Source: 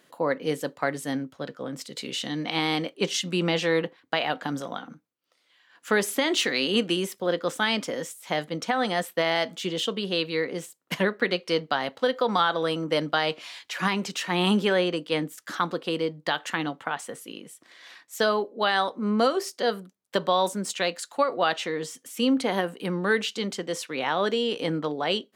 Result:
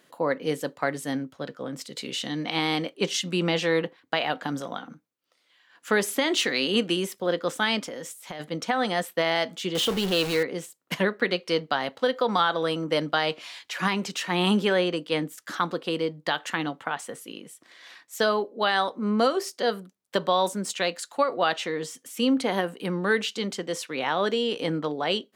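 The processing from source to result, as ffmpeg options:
-filter_complex "[0:a]asplit=3[a][b][c];[a]afade=t=out:st=7.79:d=0.02[d];[b]acompressor=threshold=-31dB:ratio=16:attack=3.2:release=140:knee=1:detection=peak,afade=t=in:st=7.79:d=0.02,afade=t=out:st=8.39:d=0.02[e];[c]afade=t=in:st=8.39:d=0.02[f];[d][e][f]amix=inputs=3:normalize=0,asettb=1/sr,asplit=3[g][h][i];[g]atrim=end=9.754[j];[h]atrim=start=9.75:end=10.43,asetpts=PTS-STARTPTS,afade=t=in:d=0.004:c=qsin,afade=t=out:st=0.676:d=0.004:c=qsin,aeval=exprs='val(0)+0.5*0.0447*sgn(val(0))':c=same[k];[i]atrim=start=10.426[l];[j][k]acrossfade=d=0.004:c1=hsin:c2=qsin[m];[m][l]acrossfade=d=0.004:c1=qsin:c2=hsin"

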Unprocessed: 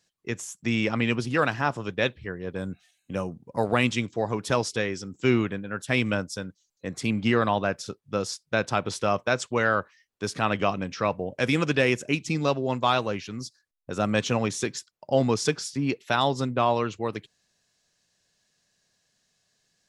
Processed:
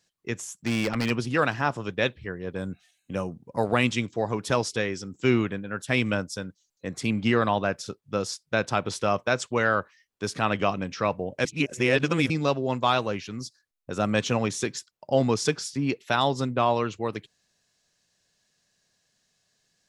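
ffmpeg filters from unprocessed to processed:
-filter_complex "[0:a]asplit=3[a][b][c];[a]afade=t=out:st=0.49:d=0.02[d];[b]aeval=exprs='0.126*(abs(mod(val(0)/0.126+3,4)-2)-1)':c=same,afade=t=in:st=0.49:d=0.02,afade=t=out:st=1.09:d=0.02[e];[c]afade=t=in:st=1.09:d=0.02[f];[d][e][f]amix=inputs=3:normalize=0,asplit=3[g][h][i];[g]atrim=end=11.452[j];[h]atrim=start=11.448:end=12.302,asetpts=PTS-STARTPTS,areverse[k];[i]atrim=start=12.298[l];[j][k]acrossfade=d=0.004:c1=hsin:c2=hsin[m];[m][l]acrossfade=d=0.004:c1=hsin:c2=hsin"

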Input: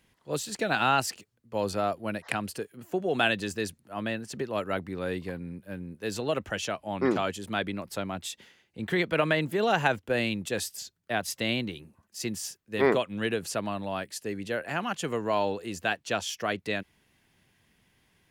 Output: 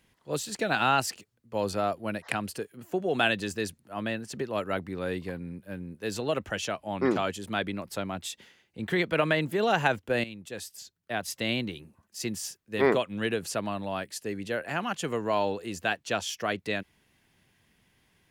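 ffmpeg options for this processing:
-filter_complex "[0:a]asplit=2[a][b];[a]atrim=end=10.24,asetpts=PTS-STARTPTS,afade=t=out:st=10.236:d=0.004:c=hsin:silence=0.211349[c];[b]atrim=start=10.24,asetpts=PTS-STARTPTS,afade=t=in:d=1.36:silence=0.211349[d];[c][d]concat=n=2:v=0:a=1"

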